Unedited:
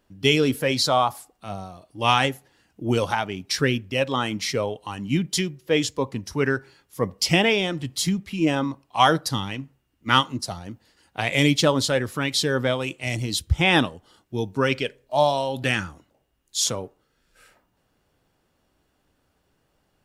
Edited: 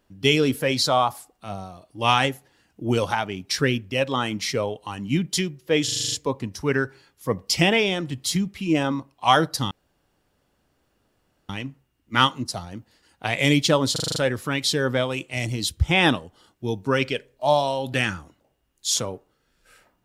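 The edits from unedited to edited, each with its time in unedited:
5.84 stutter 0.04 s, 8 plays
9.43 insert room tone 1.78 s
11.86 stutter 0.04 s, 7 plays

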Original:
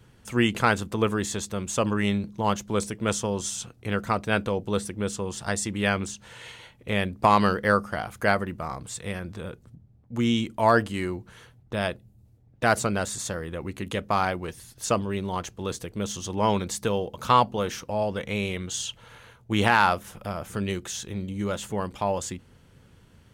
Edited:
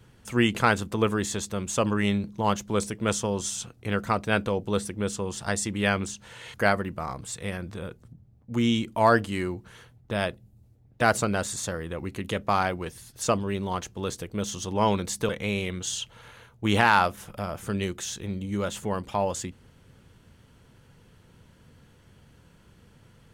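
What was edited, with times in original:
6.54–8.16 cut
16.91–18.16 cut

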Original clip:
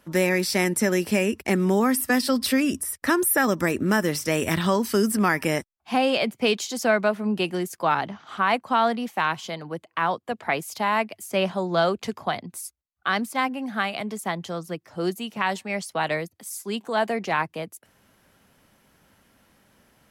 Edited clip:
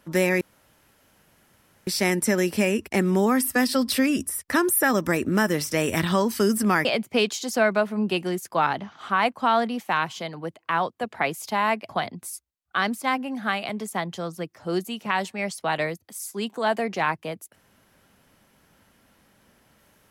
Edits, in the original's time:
0.41 insert room tone 1.46 s
5.39–6.13 cut
11.17–12.2 cut

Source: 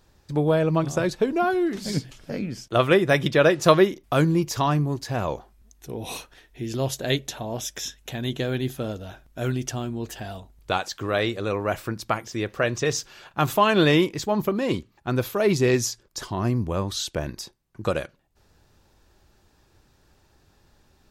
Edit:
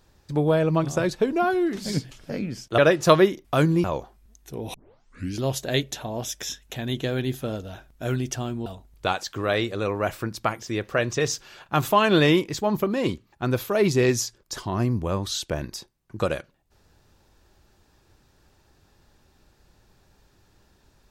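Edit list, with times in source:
2.78–3.37 cut
4.43–5.2 cut
6.1 tape start 0.66 s
10.02–10.31 cut

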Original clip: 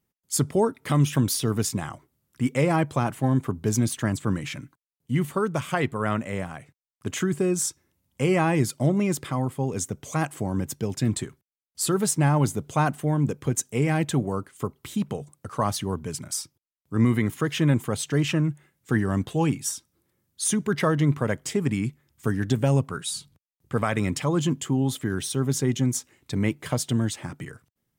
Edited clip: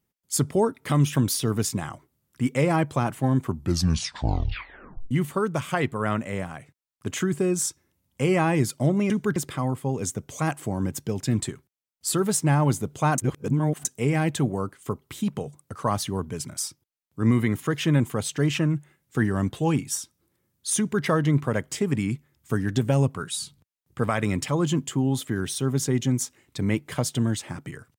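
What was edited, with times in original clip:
3.4 tape stop 1.71 s
12.92–13.59 reverse
20.52–20.78 copy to 9.1

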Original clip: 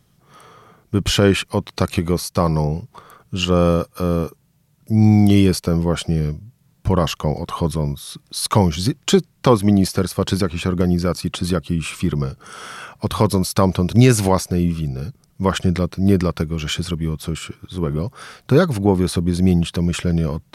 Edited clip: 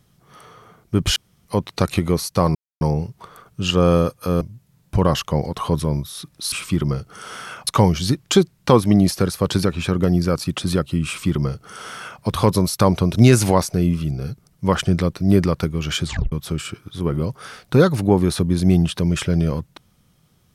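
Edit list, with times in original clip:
1.16–1.45 room tone
2.55 insert silence 0.26 s
4.15–6.33 cut
11.83–12.98 copy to 8.44
16.81 tape stop 0.28 s

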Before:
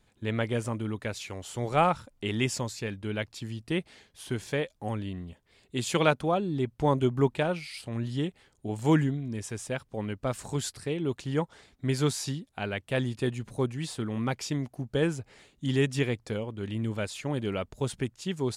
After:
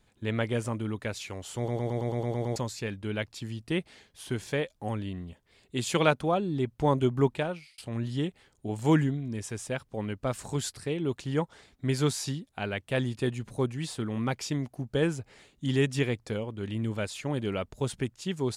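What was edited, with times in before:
1.57 stutter in place 0.11 s, 9 plays
7.3–7.78 fade out

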